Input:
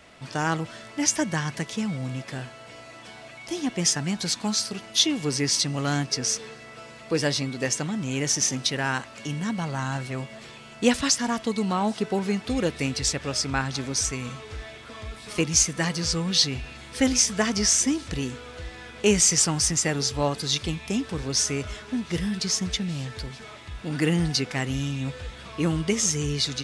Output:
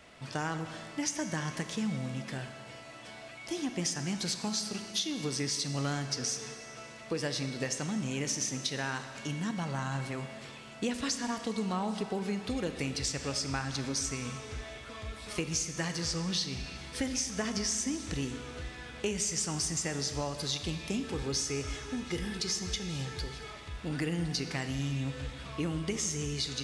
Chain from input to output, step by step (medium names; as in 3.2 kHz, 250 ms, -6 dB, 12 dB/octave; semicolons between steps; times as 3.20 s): 21.03–23.52 s: comb 2.4 ms, depth 52%; compression, threshold -26 dBFS, peak gain reduction 12 dB; Schroeder reverb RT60 1.9 s, combs from 29 ms, DRR 8.5 dB; trim -4 dB